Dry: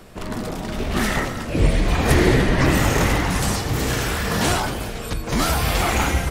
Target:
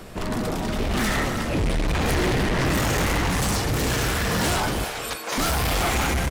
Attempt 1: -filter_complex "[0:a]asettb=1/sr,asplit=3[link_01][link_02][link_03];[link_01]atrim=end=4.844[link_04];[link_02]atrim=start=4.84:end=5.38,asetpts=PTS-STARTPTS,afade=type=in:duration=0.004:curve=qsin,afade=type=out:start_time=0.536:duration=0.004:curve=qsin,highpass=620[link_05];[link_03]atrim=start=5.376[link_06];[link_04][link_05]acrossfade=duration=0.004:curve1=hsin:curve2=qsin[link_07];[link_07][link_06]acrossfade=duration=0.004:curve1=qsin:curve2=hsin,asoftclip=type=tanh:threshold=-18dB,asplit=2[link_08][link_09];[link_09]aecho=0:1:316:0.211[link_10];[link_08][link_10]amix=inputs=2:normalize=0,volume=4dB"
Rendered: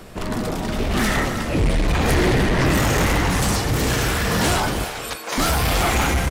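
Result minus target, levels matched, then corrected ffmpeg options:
soft clipping: distortion −4 dB
-filter_complex "[0:a]asettb=1/sr,asplit=3[link_01][link_02][link_03];[link_01]atrim=end=4.844[link_04];[link_02]atrim=start=4.84:end=5.38,asetpts=PTS-STARTPTS,afade=type=in:duration=0.004:curve=qsin,afade=type=out:start_time=0.536:duration=0.004:curve=qsin,highpass=620[link_05];[link_03]atrim=start=5.376[link_06];[link_04][link_05]acrossfade=duration=0.004:curve1=hsin:curve2=qsin[link_07];[link_07][link_06]acrossfade=duration=0.004:curve1=qsin:curve2=hsin,asoftclip=type=tanh:threshold=-24dB,asplit=2[link_08][link_09];[link_09]aecho=0:1:316:0.211[link_10];[link_08][link_10]amix=inputs=2:normalize=0,volume=4dB"

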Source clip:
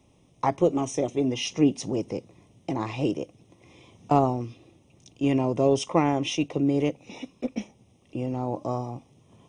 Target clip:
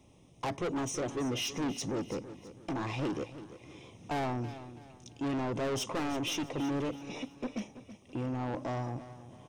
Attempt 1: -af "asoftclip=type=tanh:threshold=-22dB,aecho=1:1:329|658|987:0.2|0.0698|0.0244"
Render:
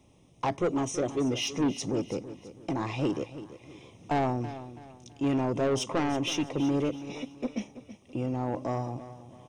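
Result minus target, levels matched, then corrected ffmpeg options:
soft clipping: distortion −5 dB
-af "asoftclip=type=tanh:threshold=-30.5dB,aecho=1:1:329|658|987:0.2|0.0698|0.0244"

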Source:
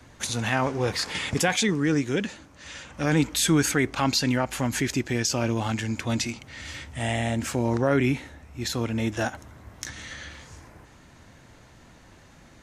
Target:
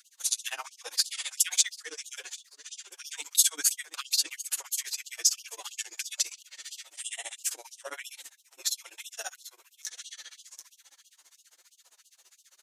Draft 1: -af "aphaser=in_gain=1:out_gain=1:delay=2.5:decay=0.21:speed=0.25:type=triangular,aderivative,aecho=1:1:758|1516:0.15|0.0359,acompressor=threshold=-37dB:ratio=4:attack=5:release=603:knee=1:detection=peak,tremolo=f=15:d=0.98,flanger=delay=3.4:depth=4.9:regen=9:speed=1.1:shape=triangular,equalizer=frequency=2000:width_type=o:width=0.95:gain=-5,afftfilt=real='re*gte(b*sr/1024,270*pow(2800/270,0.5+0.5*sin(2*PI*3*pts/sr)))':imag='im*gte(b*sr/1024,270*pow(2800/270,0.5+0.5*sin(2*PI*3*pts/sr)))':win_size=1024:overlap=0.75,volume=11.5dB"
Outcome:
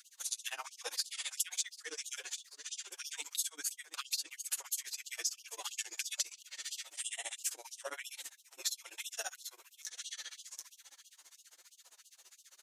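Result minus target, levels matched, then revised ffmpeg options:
downward compressor: peak gain reduction +15 dB
-af "aphaser=in_gain=1:out_gain=1:delay=2.5:decay=0.21:speed=0.25:type=triangular,aderivative,aecho=1:1:758|1516:0.15|0.0359,tremolo=f=15:d=0.98,flanger=delay=3.4:depth=4.9:regen=9:speed=1.1:shape=triangular,equalizer=frequency=2000:width_type=o:width=0.95:gain=-5,afftfilt=real='re*gte(b*sr/1024,270*pow(2800/270,0.5+0.5*sin(2*PI*3*pts/sr)))':imag='im*gte(b*sr/1024,270*pow(2800/270,0.5+0.5*sin(2*PI*3*pts/sr)))':win_size=1024:overlap=0.75,volume=11.5dB"

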